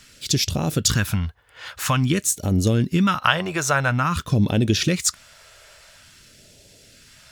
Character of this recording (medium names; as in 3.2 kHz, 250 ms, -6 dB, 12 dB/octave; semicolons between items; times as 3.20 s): phasing stages 2, 0.49 Hz, lowest notch 230–1200 Hz